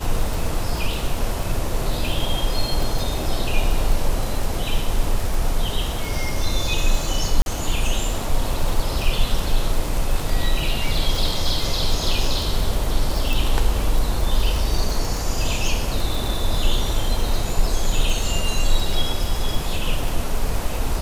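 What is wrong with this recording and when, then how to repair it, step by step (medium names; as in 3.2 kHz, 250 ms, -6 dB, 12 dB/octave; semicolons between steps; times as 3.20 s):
crackle 52 per s -23 dBFS
7.42–7.46 s: dropout 41 ms
13.33 s: pop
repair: de-click; interpolate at 7.42 s, 41 ms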